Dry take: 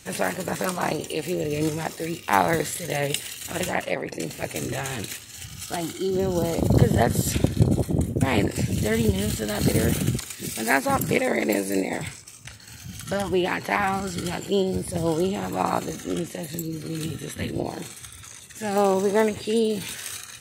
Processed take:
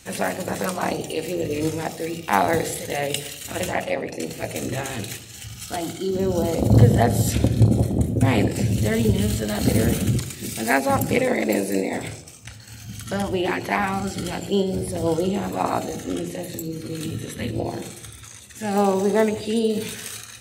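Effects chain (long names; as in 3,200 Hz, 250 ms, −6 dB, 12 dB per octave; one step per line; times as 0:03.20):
on a send: linear-phase brick-wall band-stop 890–2,300 Hz + convolution reverb RT60 0.85 s, pre-delay 3 ms, DRR 8 dB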